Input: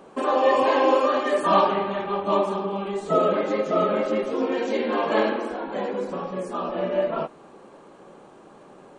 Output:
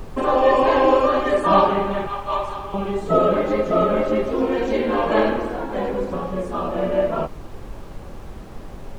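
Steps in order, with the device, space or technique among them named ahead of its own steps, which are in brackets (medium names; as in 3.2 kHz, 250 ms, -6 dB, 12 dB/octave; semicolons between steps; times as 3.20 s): 2.07–2.74 s: high-pass 890 Hz 12 dB/octave; car interior (peaking EQ 140 Hz +5 dB 0.81 oct; treble shelf 3.6 kHz -6.5 dB; brown noise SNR 13 dB); trim +3.5 dB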